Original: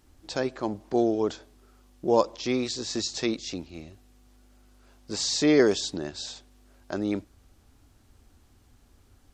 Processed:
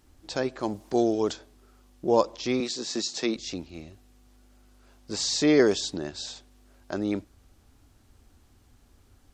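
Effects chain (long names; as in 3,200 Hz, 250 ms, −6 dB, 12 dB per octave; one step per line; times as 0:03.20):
0:00.59–0:01.32: high-shelf EQ 5,400 Hz → 3,300 Hz +10 dB
0:02.60–0:03.36: high-pass filter 160 Hz 24 dB per octave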